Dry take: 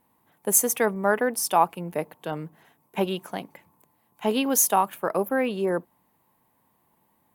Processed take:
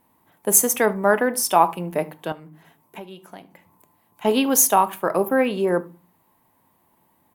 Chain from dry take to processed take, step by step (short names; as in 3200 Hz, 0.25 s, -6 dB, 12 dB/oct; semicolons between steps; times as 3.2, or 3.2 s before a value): on a send at -11.5 dB: reverb RT60 0.35 s, pre-delay 3 ms; 2.32–4.25 on the sum: compressor 3:1, threshold -45 dBFS, peak gain reduction 19 dB; echo 74 ms -23 dB; gain +4 dB